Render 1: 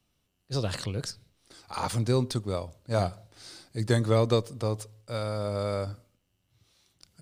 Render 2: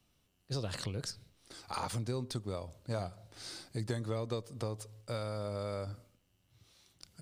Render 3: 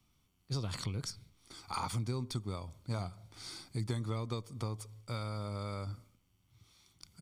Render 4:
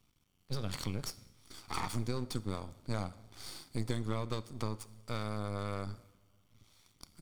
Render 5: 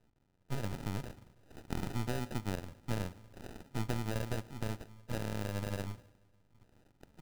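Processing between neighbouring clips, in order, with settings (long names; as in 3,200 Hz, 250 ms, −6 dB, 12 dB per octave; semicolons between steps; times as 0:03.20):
downward compressor 4 to 1, threshold −36 dBFS, peak gain reduction 15 dB; level +1 dB
comb filter 0.9 ms, depth 52%; level −1.5 dB
half-wave rectification; coupled-rooms reverb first 0.77 s, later 2.9 s, from −18 dB, DRR 15 dB; level +3.5 dB
decimation without filtering 40×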